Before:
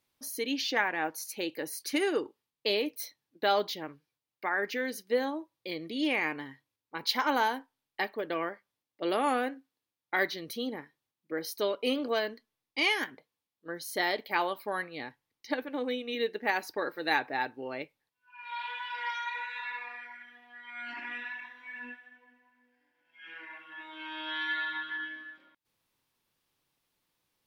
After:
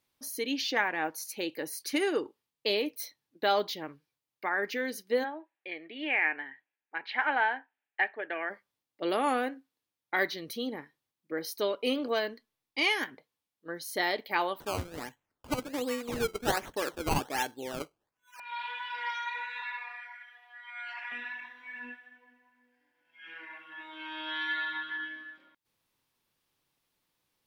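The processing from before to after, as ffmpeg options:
-filter_complex "[0:a]asplit=3[a][b][c];[a]afade=t=out:st=5.23:d=0.02[d];[b]highpass=470,equalizer=f=510:t=q:w=4:g=-6,equalizer=f=750:t=q:w=4:g=4,equalizer=f=1.1k:t=q:w=4:g=-9,equalizer=f=1.7k:t=q:w=4:g=9,equalizer=f=2.5k:t=q:w=4:g=4,lowpass=f=2.7k:w=0.5412,lowpass=f=2.7k:w=1.3066,afade=t=in:st=5.23:d=0.02,afade=t=out:st=8.49:d=0.02[e];[c]afade=t=in:st=8.49:d=0.02[f];[d][e][f]amix=inputs=3:normalize=0,asettb=1/sr,asplit=3[g][h][i];[g]atrim=end=14.604[j];[h]atrim=start=14.6:end=18.4,asetpts=PTS-STARTPTS,afade=t=in:d=0.004:c=qsin,afade=t=out:st=3.796:d=0.004:c=qsin,acrusher=samples=17:mix=1:aa=0.000001:lfo=1:lforange=17:lforate=1.3[k];[i]atrim=start=18.396[l];[j][k]acrossfade=d=0.004:c1=hsin:c2=qsin[m];[m][l]acrossfade=d=0.004:c1=qsin:c2=hsin,asettb=1/sr,asplit=3[n][o][p];[n]atrim=end=19.624[q];[o]atrim=start=19.62:end=21.12,asetpts=PTS-STARTPTS,afade=t=in:d=0.004:c=qsin,afade=t=out:st=1.496:d=0.004:c=qsin,highpass=f=660:w=0.5412,highpass=f=660:w=1.3066[r];[p]atrim=start=21.116[s];[q][r]acrossfade=d=0.004:c1=hsin:c2=qsin[t];[t][s]acrossfade=d=0.004:c1=qsin:c2=hsin"

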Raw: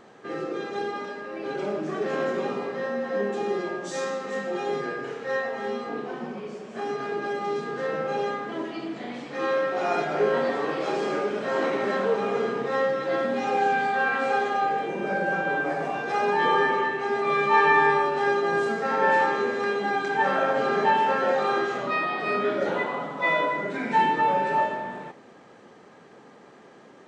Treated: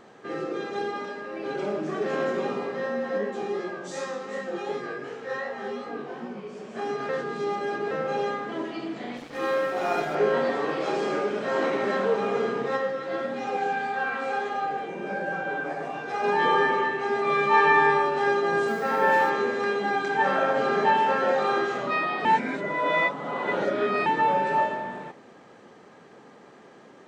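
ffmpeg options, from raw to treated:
-filter_complex "[0:a]asplit=3[a][b][c];[a]afade=t=out:st=3.17:d=0.02[d];[b]flanger=delay=16:depth=5.8:speed=2.7,afade=t=in:st=3.17:d=0.02,afade=t=out:st=6.56:d=0.02[e];[c]afade=t=in:st=6.56:d=0.02[f];[d][e][f]amix=inputs=3:normalize=0,asettb=1/sr,asplit=3[g][h][i];[g]atrim=end=9.174[j];[h]atrim=start=9.17:end=10.15,asetpts=PTS-STARTPTS,afade=t=in:d=0.004:c=qsin,afade=t=out:st=0.976:d=0.004:c=qsin,aeval=exprs='sgn(val(0))*max(abs(val(0))-0.00631,0)':c=same[k];[i]atrim=start=10.146[l];[j][k]acrossfade=d=0.004:c1=hsin:c2=qsin[m];[m][l]acrossfade=d=0.004:c1=qsin:c2=hsin,asplit=3[n][o][p];[n]afade=t=out:st=12.76:d=0.02[q];[o]flanger=delay=5.9:depth=6.3:regen=63:speed=1.5:shape=triangular,afade=t=in:st=12.76:d=0.02,afade=t=out:st=16.23:d=0.02[r];[p]afade=t=in:st=16.23:d=0.02[s];[q][r][s]amix=inputs=3:normalize=0,asettb=1/sr,asplit=3[t][u][v];[t]atrim=end=18.684[w];[u]atrim=start=18.68:end=19.3,asetpts=PTS-STARTPTS,afade=t=in:d=0.004:c=qsin,afade=t=out:st=0.616:d=0.004:c=qsin,acrusher=bits=7:mix=0:aa=0.5[x];[v]atrim=start=19.296[y];[w][x]acrossfade=d=0.004:c1=hsin:c2=qsin[z];[z][y]acrossfade=d=0.004:c1=qsin:c2=hsin,asplit=5[aa][ab][ac][ad][ae];[aa]atrim=end=7.092[af];[ab]atrim=start=7.088:end=7.912,asetpts=PTS-STARTPTS,areverse[ag];[ac]atrim=start=7.908:end=22.252[ah];[ad]atrim=start=22.248:end=24.062,asetpts=PTS-STARTPTS,areverse[ai];[ae]atrim=start=24.058[aj];[af][ag]acrossfade=d=0.004:c1=hsin:c2=hsin[ak];[ak][ah]acrossfade=d=0.004:c1=hsin:c2=hsin[al];[al][ai]acrossfade=d=0.004:c1=hsin:c2=hsin[am];[am][aj]acrossfade=d=0.004:c1=hsin:c2=hsin"

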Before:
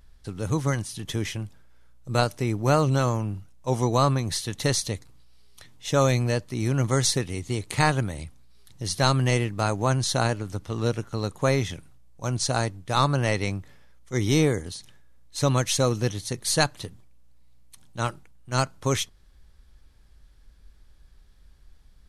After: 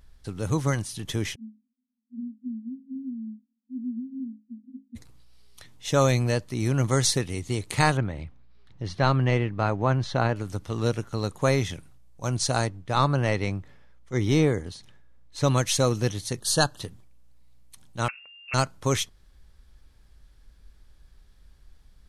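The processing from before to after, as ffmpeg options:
-filter_complex "[0:a]asplit=3[a][b][c];[a]afade=t=out:st=1.34:d=0.02[d];[b]asuperpass=centerf=240:order=20:qfactor=4.3,afade=t=in:st=1.34:d=0.02,afade=t=out:st=4.95:d=0.02[e];[c]afade=t=in:st=4.95:d=0.02[f];[d][e][f]amix=inputs=3:normalize=0,asettb=1/sr,asplit=3[g][h][i];[g]atrim=end=7.974[j];[h]atrim=start=7.97:end=10.36,asetpts=PTS-STARTPTS,afade=t=in:d=0.004:c=qsin,afade=t=out:st=2.386:d=0.004:c=qsin,lowpass=2.6k[k];[i]atrim=start=10.356[l];[j][k]acrossfade=d=0.004:c1=hsin:c2=qsin[m];[m][l]acrossfade=d=0.004:c1=qsin:c2=hsin,asettb=1/sr,asplit=3[n][o][p];[n]atrim=end=12.674[q];[o]atrim=start=12.67:end=15.44,asetpts=PTS-STARTPTS,afade=t=in:d=0.004:c=qsin,afade=t=out:st=2.766:d=0.004:c=qsin,lowpass=f=3k:p=1[r];[p]atrim=start=15.436[s];[q][r]acrossfade=d=0.004:c1=hsin:c2=qsin[t];[t][s]acrossfade=d=0.004:c1=qsin:c2=hsin,asettb=1/sr,asplit=3[u][v][w];[u]atrim=end=16.404[x];[v]atrim=start=16.4:end=16.8,asetpts=PTS-STARTPTS,afade=t=in:d=0.004:c=qsin,afade=t=out:st=0.396:d=0.004:c=qsin,asuperstop=centerf=2200:order=8:qfactor=2.3[y];[w]atrim=start=16.796[z];[x][y]acrossfade=d=0.004:c1=hsin:c2=qsin[aa];[aa][z]acrossfade=d=0.004:c1=qsin:c2=hsin,asettb=1/sr,asplit=3[ab][ac][ad];[ab]atrim=end=18.084[ae];[ac]atrim=start=18.08:end=18.54,asetpts=PTS-STARTPTS,afade=t=in:d=0.004:c=qsin,afade=t=out:st=0.456:d=0.004:c=qsin,lowpass=f=2.4k:t=q:w=0.5098,lowpass=f=2.4k:t=q:w=0.6013,lowpass=f=2.4k:t=q:w=0.9,lowpass=f=2.4k:t=q:w=2.563,afreqshift=-2800[af];[ad]atrim=start=18.536[ag];[ae][af]acrossfade=d=0.004:c1=hsin:c2=qsin[ah];[ah][ag]acrossfade=d=0.004:c1=qsin:c2=hsin"

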